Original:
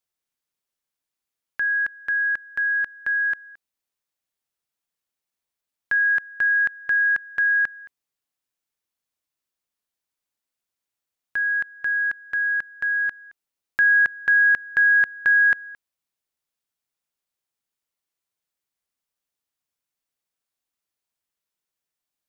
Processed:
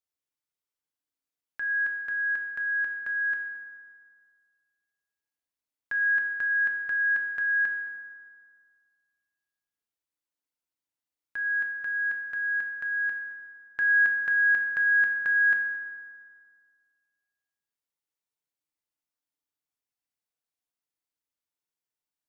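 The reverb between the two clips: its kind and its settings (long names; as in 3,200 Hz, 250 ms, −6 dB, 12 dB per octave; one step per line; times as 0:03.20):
feedback delay network reverb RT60 1.9 s, low-frequency decay 1×, high-frequency decay 0.55×, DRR 1.5 dB
level −9 dB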